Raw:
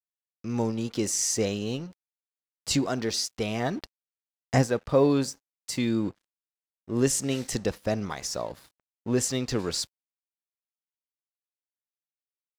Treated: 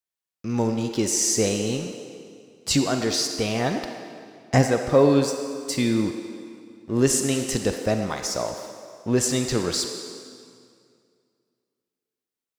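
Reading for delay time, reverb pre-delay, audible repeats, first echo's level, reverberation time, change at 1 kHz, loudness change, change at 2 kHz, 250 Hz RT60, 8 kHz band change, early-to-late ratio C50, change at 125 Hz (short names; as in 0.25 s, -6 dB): none, 36 ms, none, none, 2.2 s, +5.0 dB, +4.5 dB, +5.0 dB, 2.3 s, +5.0 dB, 5.5 dB, +4.0 dB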